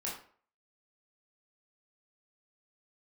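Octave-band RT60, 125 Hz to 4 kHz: 0.40, 0.45, 0.50, 0.50, 0.40, 0.35 s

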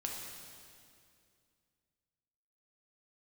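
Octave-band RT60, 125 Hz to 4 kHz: 2.8, 2.8, 2.5, 2.2, 2.2, 2.1 s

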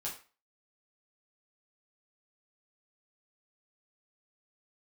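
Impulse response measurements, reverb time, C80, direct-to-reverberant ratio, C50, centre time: 0.35 s, 13.5 dB, -5.0 dB, 8.0 dB, 25 ms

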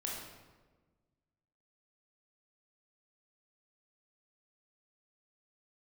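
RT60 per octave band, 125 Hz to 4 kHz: 1.9, 1.8, 1.5, 1.2, 1.0, 0.85 s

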